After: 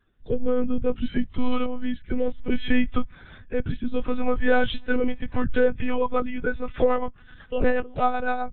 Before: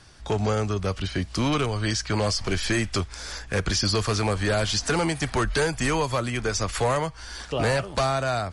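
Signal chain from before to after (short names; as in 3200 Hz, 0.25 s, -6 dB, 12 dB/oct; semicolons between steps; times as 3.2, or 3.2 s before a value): rotary speaker horn 0.6 Hz, later 8 Hz, at 4.73; monotone LPC vocoder at 8 kHz 250 Hz; spectral expander 1.5:1; gain +4 dB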